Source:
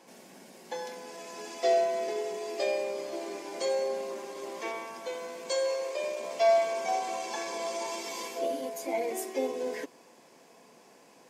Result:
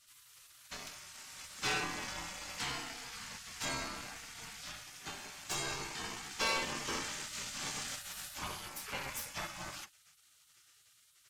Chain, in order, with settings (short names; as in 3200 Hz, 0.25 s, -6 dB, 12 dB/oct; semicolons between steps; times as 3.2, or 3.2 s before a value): added harmonics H 8 -20 dB, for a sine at -14.5 dBFS; spectral gate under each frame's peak -20 dB weak; gain +2 dB